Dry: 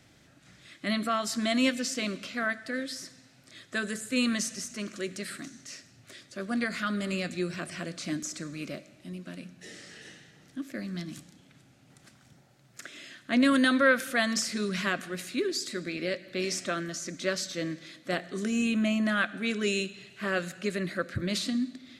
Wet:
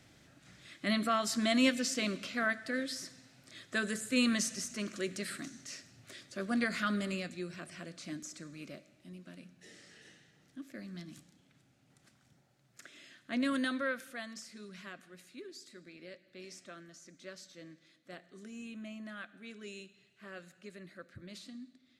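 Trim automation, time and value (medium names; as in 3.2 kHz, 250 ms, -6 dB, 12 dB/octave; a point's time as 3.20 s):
6.94 s -2 dB
7.36 s -9.5 dB
13.60 s -9.5 dB
14.36 s -18.5 dB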